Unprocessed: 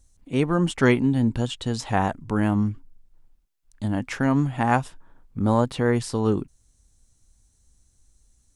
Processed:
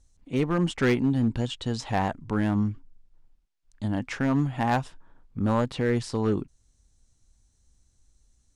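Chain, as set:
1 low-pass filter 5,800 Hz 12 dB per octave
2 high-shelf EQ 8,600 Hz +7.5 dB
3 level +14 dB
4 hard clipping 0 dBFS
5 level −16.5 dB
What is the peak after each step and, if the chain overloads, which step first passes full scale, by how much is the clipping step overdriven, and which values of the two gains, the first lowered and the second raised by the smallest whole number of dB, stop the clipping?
−5.0, −5.0, +9.0, 0.0, −16.5 dBFS
step 3, 9.0 dB
step 3 +5 dB, step 5 −7.5 dB

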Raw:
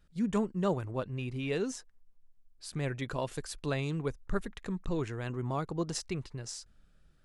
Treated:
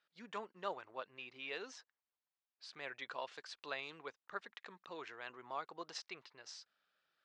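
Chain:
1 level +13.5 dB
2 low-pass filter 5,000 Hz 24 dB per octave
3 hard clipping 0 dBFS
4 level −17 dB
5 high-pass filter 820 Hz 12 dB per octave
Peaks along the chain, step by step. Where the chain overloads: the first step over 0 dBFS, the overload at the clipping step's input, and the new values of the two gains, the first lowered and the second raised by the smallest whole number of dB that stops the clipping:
−5.0, −5.5, −5.5, −22.5, −27.0 dBFS
no step passes full scale

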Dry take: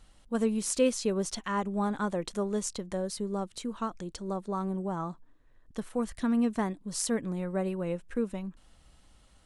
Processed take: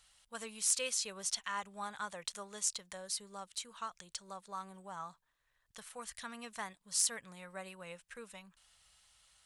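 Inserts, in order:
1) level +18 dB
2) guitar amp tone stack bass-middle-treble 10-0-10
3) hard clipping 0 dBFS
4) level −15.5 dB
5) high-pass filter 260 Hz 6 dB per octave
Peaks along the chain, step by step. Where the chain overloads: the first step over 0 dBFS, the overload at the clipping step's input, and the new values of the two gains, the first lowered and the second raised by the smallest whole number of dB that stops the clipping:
+5.0, +4.0, 0.0, −15.5, −15.0 dBFS
step 1, 4.0 dB
step 1 +14 dB, step 4 −11.5 dB

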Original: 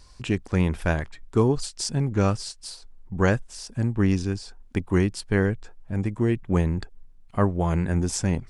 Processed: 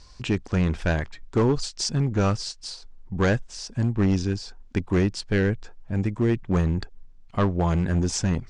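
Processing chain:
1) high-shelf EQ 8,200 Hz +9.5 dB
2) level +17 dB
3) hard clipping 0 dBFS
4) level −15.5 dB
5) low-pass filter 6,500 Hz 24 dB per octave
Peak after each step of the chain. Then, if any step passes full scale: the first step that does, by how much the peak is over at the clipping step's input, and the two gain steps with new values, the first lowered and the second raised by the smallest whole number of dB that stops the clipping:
−8.0, +9.0, 0.0, −15.5, −14.0 dBFS
step 2, 9.0 dB
step 2 +8 dB, step 4 −6.5 dB

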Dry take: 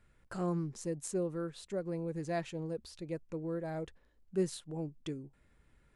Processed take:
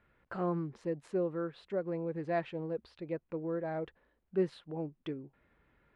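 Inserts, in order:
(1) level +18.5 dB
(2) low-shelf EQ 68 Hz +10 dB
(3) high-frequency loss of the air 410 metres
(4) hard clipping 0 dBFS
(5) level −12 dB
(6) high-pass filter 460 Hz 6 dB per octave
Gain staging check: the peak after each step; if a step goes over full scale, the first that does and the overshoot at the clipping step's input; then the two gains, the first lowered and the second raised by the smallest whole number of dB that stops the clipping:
−3.5, −2.0, −3.0, −3.0, −15.0, −20.0 dBFS
no step passes full scale

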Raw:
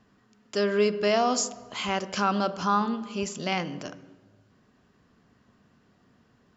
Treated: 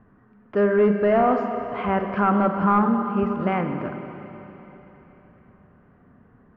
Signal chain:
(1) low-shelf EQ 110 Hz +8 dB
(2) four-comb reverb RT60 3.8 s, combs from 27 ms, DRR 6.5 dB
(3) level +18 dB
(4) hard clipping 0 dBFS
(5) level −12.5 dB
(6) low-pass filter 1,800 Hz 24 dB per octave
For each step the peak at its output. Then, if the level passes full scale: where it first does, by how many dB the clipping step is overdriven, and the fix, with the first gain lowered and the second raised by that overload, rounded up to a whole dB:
−11.5, −10.5, +7.5, 0.0, −12.5, −11.0 dBFS
step 3, 7.5 dB
step 3 +10 dB, step 5 −4.5 dB

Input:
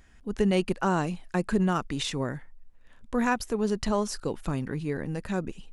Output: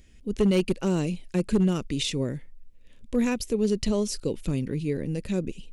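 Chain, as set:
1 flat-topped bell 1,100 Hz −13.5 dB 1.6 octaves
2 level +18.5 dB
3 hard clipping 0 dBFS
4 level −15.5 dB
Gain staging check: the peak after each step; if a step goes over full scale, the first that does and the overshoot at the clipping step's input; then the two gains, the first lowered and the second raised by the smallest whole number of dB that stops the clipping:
−13.5, +5.0, 0.0, −15.5 dBFS
step 2, 5.0 dB
step 2 +13.5 dB, step 4 −10.5 dB

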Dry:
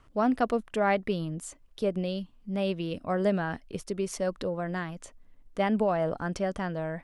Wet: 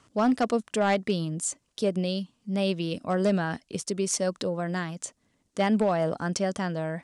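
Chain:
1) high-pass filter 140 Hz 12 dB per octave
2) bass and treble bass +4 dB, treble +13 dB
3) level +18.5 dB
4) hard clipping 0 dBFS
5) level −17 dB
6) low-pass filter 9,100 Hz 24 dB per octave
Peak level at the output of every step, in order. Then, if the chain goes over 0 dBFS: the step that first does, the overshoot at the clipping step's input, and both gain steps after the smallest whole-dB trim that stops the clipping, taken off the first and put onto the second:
−12.0, −10.0, +8.5, 0.0, −17.0, −15.5 dBFS
step 3, 8.5 dB
step 3 +9.5 dB, step 5 −8 dB

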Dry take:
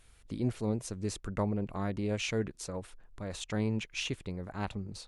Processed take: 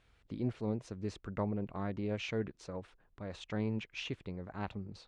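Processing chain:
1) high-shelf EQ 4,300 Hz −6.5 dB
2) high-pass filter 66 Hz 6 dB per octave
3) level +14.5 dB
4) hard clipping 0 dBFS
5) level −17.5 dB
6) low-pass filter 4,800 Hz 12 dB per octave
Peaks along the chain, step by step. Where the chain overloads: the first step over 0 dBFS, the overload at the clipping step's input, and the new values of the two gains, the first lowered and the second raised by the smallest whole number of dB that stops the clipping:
−19.5, −19.0, −4.5, −4.5, −22.0, −22.0 dBFS
no step passes full scale

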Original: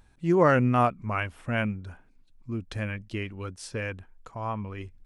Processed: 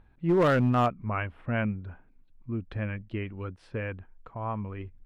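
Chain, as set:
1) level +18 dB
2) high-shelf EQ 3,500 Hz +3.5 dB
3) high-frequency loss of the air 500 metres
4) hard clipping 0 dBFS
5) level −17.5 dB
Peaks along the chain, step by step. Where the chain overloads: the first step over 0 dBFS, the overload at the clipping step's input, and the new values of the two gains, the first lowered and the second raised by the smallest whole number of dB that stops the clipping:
+9.0, +9.0, +8.0, 0.0, −17.5 dBFS
step 1, 8.0 dB
step 1 +10 dB, step 5 −9.5 dB

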